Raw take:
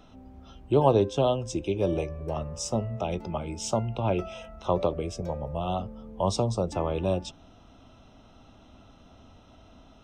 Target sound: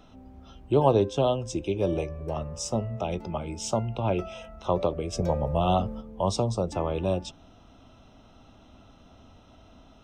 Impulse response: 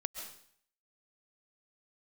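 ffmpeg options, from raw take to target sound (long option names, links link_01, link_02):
-filter_complex "[0:a]asplit=3[link_01][link_02][link_03];[link_01]afade=type=out:start_time=5.12:duration=0.02[link_04];[link_02]acontrast=61,afade=type=in:start_time=5.12:duration=0.02,afade=type=out:start_time=6:duration=0.02[link_05];[link_03]afade=type=in:start_time=6:duration=0.02[link_06];[link_04][link_05][link_06]amix=inputs=3:normalize=0"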